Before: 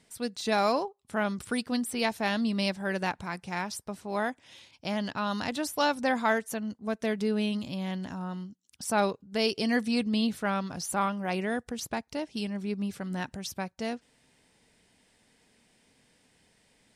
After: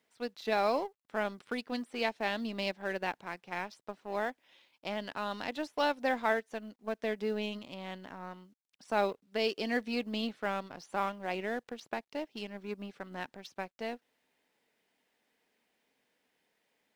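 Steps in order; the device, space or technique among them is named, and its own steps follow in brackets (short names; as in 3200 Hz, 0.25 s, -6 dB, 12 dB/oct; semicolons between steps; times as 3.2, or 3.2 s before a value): phone line with mismatched companding (BPF 320–3300 Hz; G.711 law mismatch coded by A); dynamic EQ 1200 Hz, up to -5 dB, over -42 dBFS, Q 1.2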